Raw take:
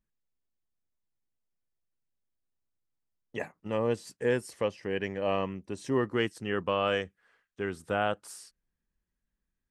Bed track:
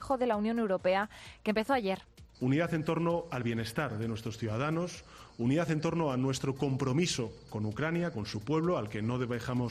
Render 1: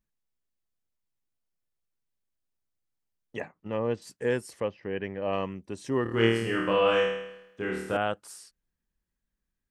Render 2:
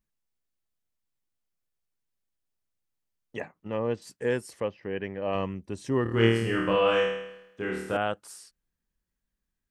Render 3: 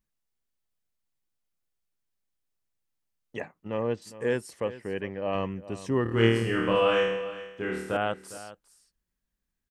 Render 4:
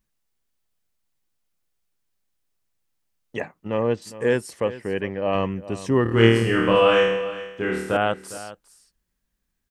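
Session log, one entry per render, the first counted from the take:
0:03.40–0:04.02: high-frequency loss of the air 150 metres; 0:04.60–0:05.33: high-frequency loss of the air 270 metres; 0:06.03–0:07.97: flutter between parallel walls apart 4.5 metres, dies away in 0.83 s
0:05.35–0:06.76: low-shelf EQ 130 Hz +8.5 dB
single-tap delay 407 ms −15.5 dB
level +6.5 dB

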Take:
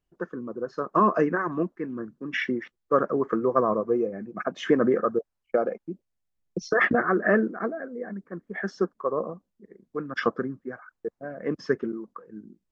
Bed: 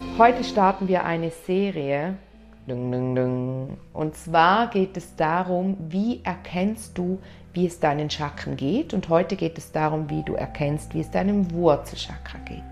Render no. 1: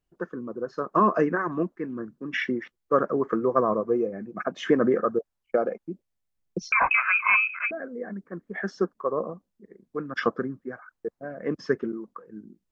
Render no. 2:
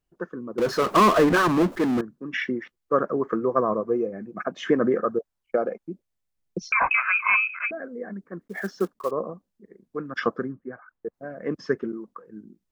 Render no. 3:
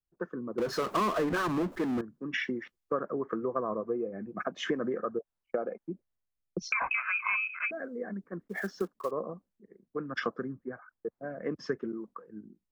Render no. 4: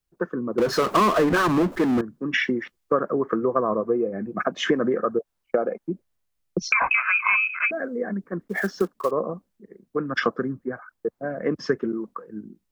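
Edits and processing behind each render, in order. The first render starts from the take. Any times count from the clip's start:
0:06.72–0:07.71: voice inversion scrambler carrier 2,800 Hz
0:00.58–0:02.01: power curve on the samples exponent 0.5; 0:08.41–0:09.12: one scale factor per block 5 bits; 0:10.52–0:11.14: high-frequency loss of the air 360 metres
downward compressor 4 to 1, threshold −30 dBFS, peak gain reduction 13.5 dB; multiband upward and downward expander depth 40%
level +9.5 dB

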